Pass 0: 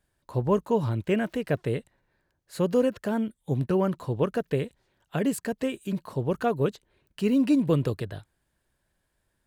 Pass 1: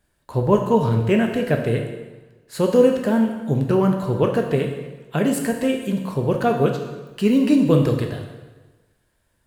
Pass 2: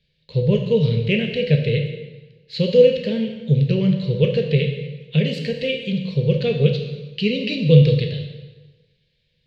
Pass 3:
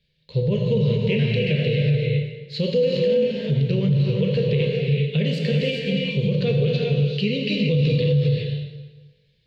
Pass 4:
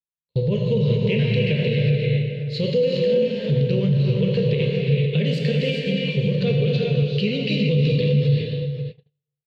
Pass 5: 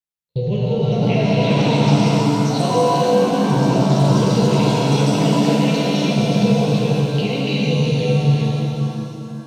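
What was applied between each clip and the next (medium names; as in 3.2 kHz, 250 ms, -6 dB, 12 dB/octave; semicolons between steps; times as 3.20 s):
plate-style reverb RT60 1.2 s, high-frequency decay 0.9×, DRR 2.5 dB; trim +5.5 dB
FFT filter 110 Hz 0 dB, 150 Hz +13 dB, 300 Hz -13 dB, 490 Hz +7 dB, 750 Hz -19 dB, 1.4 kHz -17 dB, 2.2 kHz +9 dB, 4.2 kHz +14 dB, 9.3 kHz -26 dB; trim -3 dB
gated-style reverb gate 430 ms rising, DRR 1 dB; peak limiter -11 dBFS, peak gain reduction 11.5 dB; trim -1.5 dB
echo from a far wall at 91 m, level -8 dB; gate -29 dBFS, range -41 dB
ever faster or slower copies 664 ms, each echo +6 st, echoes 2; de-hum 87.67 Hz, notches 37; pitch-shifted reverb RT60 2.6 s, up +7 st, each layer -8 dB, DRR 0 dB; trim -1 dB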